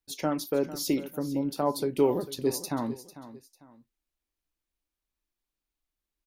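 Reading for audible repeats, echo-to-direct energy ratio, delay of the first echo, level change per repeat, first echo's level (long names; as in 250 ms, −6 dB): 2, −14.5 dB, 448 ms, −9.5 dB, −15.0 dB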